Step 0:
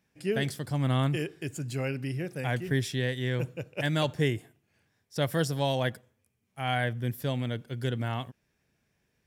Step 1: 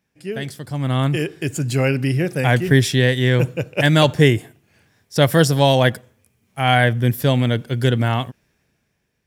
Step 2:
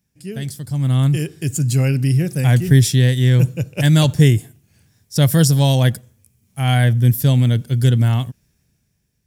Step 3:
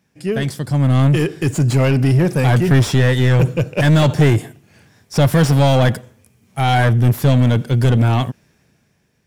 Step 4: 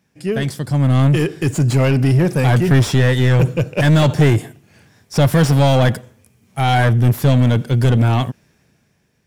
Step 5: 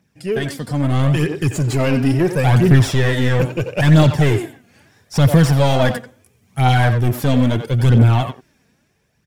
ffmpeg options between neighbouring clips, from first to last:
ffmpeg -i in.wav -af "dynaudnorm=framelen=220:gausssize=11:maxgain=15dB,volume=1dB" out.wav
ffmpeg -i in.wav -af "bass=frequency=250:gain=14,treble=frequency=4000:gain=14,volume=-7.5dB" out.wav
ffmpeg -i in.wav -filter_complex "[0:a]asplit=2[link_01][link_02];[link_02]highpass=frequency=720:poles=1,volume=28dB,asoftclip=type=tanh:threshold=-1dB[link_03];[link_01][link_03]amix=inputs=2:normalize=0,lowpass=frequency=1000:poles=1,volume=-6dB,volume=-2.5dB" out.wav
ffmpeg -i in.wav -af anull out.wav
ffmpeg -i in.wav -filter_complex "[0:a]asplit=2[link_01][link_02];[link_02]adelay=90,highpass=300,lowpass=3400,asoftclip=type=hard:threshold=-13dB,volume=-7dB[link_03];[link_01][link_03]amix=inputs=2:normalize=0,aphaser=in_gain=1:out_gain=1:delay=4.4:decay=0.47:speed=0.75:type=triangular,volume=-2dB" out.wav

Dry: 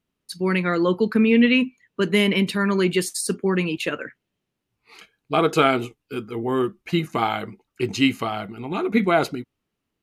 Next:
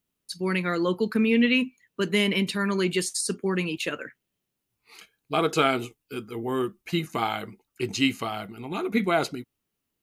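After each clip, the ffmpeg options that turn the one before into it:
ffmpeg -i in.wav -filter_complex "[0:a]acrossover=split=8700[link_01][link_02];[link_02]acompressor=threshold=-58dB:ratio=4:attack=1:release=60[link_03];[link_01][link_03]amix=inputs=2:normalize=0,aemphasis=mode=production:type=50kf,volume=-5dB" out.wav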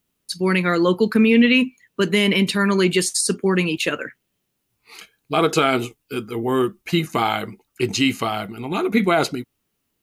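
ffmpeg -i in.wav -af "alimiter=level_in=13dB:limit=-1dB:release=50:level=0:latency=1,volume=-5.5dB" out.wav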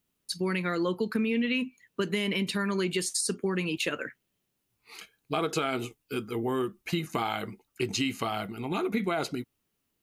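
ffmpeg -i in.wav -af "acompressor=threshold=-21dB:ratio=4,volume=-5dB" out.wav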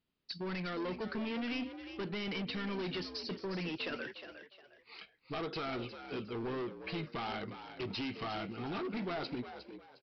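ffmpeg -i in.wav -filter_complex "[0:a]aresample=11025,asoftclip=type=hard:threshold=-31dB,aresample=44100,asplit=4[link_01][link_02][link_03][link_04];[link_02]adelay=358,afreqshift=63,volume=-10.5dB[link_05];[link_03]adelay=716,afreqshift=126,volume=-21dB[link_06];[link_04]adelay=1074,afreqshift=189,volume=-31.4dB[link_07];[link_01][link_05][link_06][link_07]amix=inputs=4:normalize=0,volume=-4.5dB" out.wav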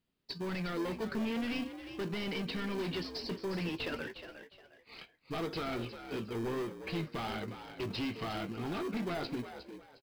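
ffmpeg -i in.wav -filter_complex "[0:a]asplit=2[link_01][link_02];[link_02]acrusher=samples=32:mix=1:aa=0.000001,volume=-9dB[link_03];[link_01][link_03]amix=inputs=2:normalize=0,asplit=2[link_04][link_05];[link_05]adelay=18,volume=-13dB[link_06];[link_04][link_06]amix=inputs=2:normalize=0" out.wav

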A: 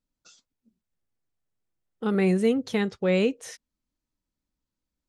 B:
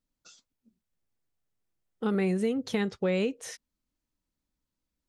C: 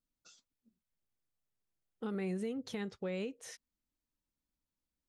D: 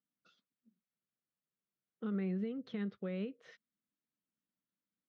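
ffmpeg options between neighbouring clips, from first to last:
ffmpeg -i in.wav -af "acompressor=threshold=-24dB:ratio=6" out.wav
ffmpeg -i in.wav -af "alimiter=limit=-23.5dB:level=0:latency=1:release=365,volume=-6.5dB" out.wav
ffmpeg -i in.wav -af "highpass=frequency=100:width=0.5412,highpass=frequency=100:width=1.3066,equalizer=frequency=100:width_type=q:width=4:gain=-9,equalizer=frequency=200:width_type=q:width=4:gain=7,equalizer=frequency=860:width_type=q:width=4:gain=-10,equalizer=frequency=1300:width_type=q:width=4:gain=3,equalizer=frequency=2500:width_type=q:width=4:gain=-4,lowpass=frequency=3500:width=0.5412,lowpass=frequency=3500:width=1.3066,volume=-3dB" out.wav

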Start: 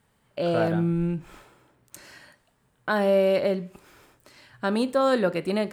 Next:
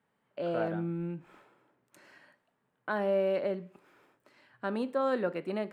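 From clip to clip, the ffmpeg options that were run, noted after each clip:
ffmpeg -i in.wav -filter_complex "[0:a]acrossover=split=150 2900:gain=0.1 1 0.251[link_01][link_02][link_03];[link_01][link_02][link_03]amix=inputs=3:normalize=0,volume=-7.5dB" out.wav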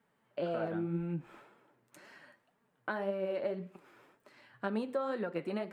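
ffmpeg -i in.wav -af "acompressor=threshold=-33dB:ratio=12,flanger=delay=4.3:depth=4.8:regen=43:speed=1.9:shape=sinusoidal,volume=6dB" out.wav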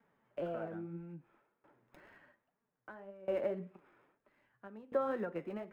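ffmpeg -i in.wav -filter_complex "[0:a]acrossover=split=300|3000[link_01][link_02][link_03];[link_03]acrusher=samples=30:mix=1:aa=0.000001[link_04];[link_01][link_02][link_04]amix=inputs=3:normalize=0,aeval=exprs='val(0)*pow(10,-21*if(lt(mod(0.61*n/s,1),2*abs(0.61)/1000),1-mod(0.61*n/s,1)/(2*abs(0.61)/1000),(mod(0.61*n/s,1)-2*abs(0.61)/1000)/(1-2*abs(0.61)/1000))/20)':channel_layout=same,volume=2dB" out.wav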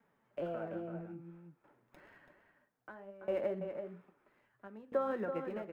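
ffmpeg -i in.wav -filter_complex "[0:a]asplit=2[link_01][link_02];[link_02]adelay=332.4,volume=-7dB,highshelf=frequency=4000:gain=-7.48[link_03];[link_01][link_03]amix=inputs=2:normalize=0" out.wav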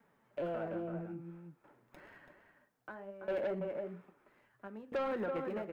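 ffmpeg -i in.wav -af "asoftclip=type=tanh:threshold=-34dB,volume=3.5dB" out.wav

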